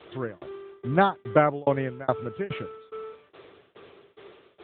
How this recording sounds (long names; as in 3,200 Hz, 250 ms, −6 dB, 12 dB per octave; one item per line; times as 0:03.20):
a quantiser's noise floor 8 bits, dither triangular
tremolo saw down 2.4 Hz, depth 100%
AMR narrowband